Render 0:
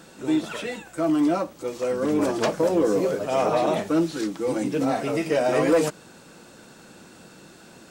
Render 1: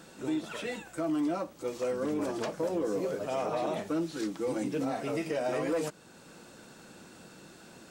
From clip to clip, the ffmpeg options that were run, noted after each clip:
-af "alimiter=limit=0.106:level=0:latency=1:release=425,volume=0.631"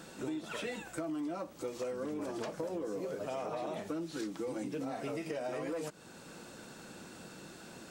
-af "acompressor=threshold=0.0141:ratio=6,volume=1.19"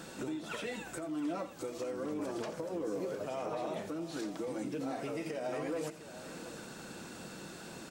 -filter_complex "[0:a]alimiter=level_in=2.66:limit=0.0631:level=0:latency=1:release=352,volume=0.376,asplit=2[s0][s1];[s1]aecho=0:1:85|708:0.2|0.211[s2];[s0][s2]amix=inputs=2:normalize=0,volume=1.41"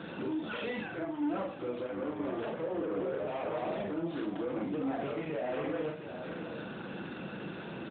-filter_complex "[0:a]asoftclip=type=tanh:threshold=0.0119,asplit=2[s0][s1];[s1]adelay=41,volume=0.75[s2];[s0][s2]amix=inputs=2:normalize=0,volume=2" -ar 8000 -c:a libopencore_amrnb -b:a 12200

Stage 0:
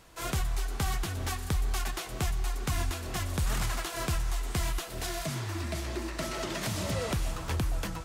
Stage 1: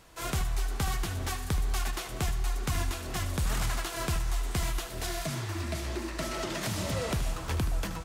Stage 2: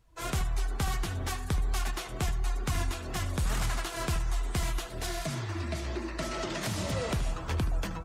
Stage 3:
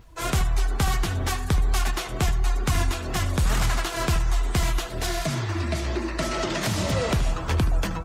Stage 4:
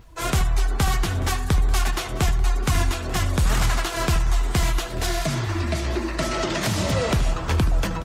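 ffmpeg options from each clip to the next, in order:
-af "aecho=1:1:76:0.266"
-af "afftdn=nr=18:nf=-48"
-af "adynamicequalizer=threshold=0.00126:dfrequency=9700:dqfactor=1.9:tfrequency=9700:tqfactor=1.9:attack=5:release=100:ratio=0.375:range=2:mode=cutabove:tftype=bell,acompressor=mode=upward:threshold=0.00316:ratio=2.5,volume=2.37"
-af "aecho=1:1:889:0.112,volume=1.26"

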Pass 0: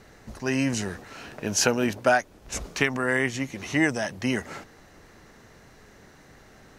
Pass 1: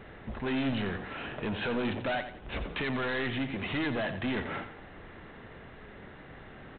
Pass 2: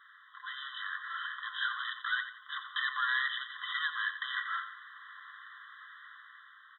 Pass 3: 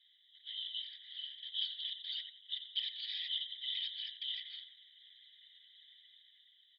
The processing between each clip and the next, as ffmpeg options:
-af "alimiter=limit=0.158:level=0:latency=1,aresample=8000,asoftclip=type=tanh:threshold=0.0251,aresample=44100,aecho=1:1:88|176|264|352:0.299|0.102|0.0345|0.0117,volume=1.5"
-af "dynaudnorm=f=220:g=7:m=2.24,afftfilt=real='re*eq(mod(floor(b*sr/1024/1000),2),1)':imag='im*eq(mod(floor(b*sr/1024/1000),2),1)':win_size=1024:overlap=0.75,volume=0.794"
-af "aeval=exprs='0.1*sin(PI/2*1.58*val(0)/0.1)':c=same,afftfilt=real='hypot(re,im)*cos(2*PI*random(0))':imag='hypot(re,im)*sin(2*PI*random(1))':win_size=512:overlap=0.75,asuperpass=centerf=3300:order=12:qfactor=1.4,volume=1.26"

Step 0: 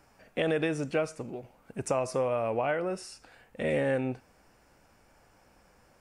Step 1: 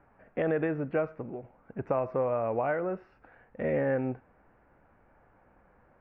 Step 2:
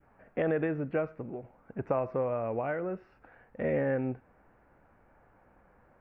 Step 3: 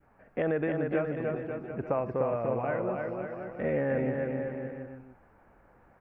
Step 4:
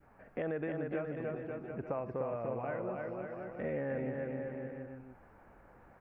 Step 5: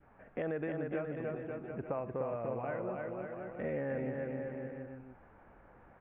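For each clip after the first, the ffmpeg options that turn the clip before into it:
-af "lowpass=f=1900:w=0.5412,lowpass=f=1900:w=1.3066"
-af "adynamicequalizer=threshold=0.00794:dfrequency=900:dqfactor=0.7:tfrequency=900:tqfactor=0.7:attack=5:release=100:ratio=0.375:range=3:mode=cutabove:tftype=bell"
-af "aecho=1:1:300|540|732|885.6|1008:0.631|0.398|0.251|0.158|0.1"
-af "acompressor=threshold=0.00316:ratio=1.5,volume=1.12"
-af "aresample=8000,aresample=44100"

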